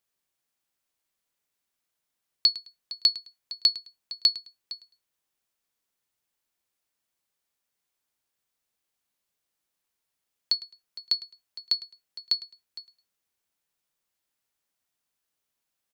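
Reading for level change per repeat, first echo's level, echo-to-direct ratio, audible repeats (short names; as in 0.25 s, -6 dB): -12.5 dB, -18.0 dB, -18.0 dB, 2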